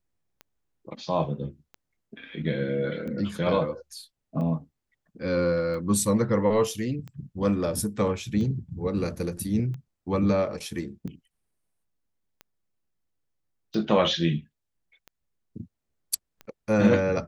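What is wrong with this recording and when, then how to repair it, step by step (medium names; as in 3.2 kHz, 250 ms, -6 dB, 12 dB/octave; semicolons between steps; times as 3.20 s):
tick 45 rpm -27 dBFS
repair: de-click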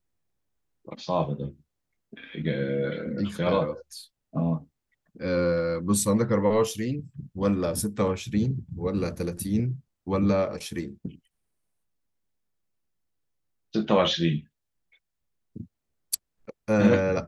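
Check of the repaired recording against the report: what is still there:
nothing left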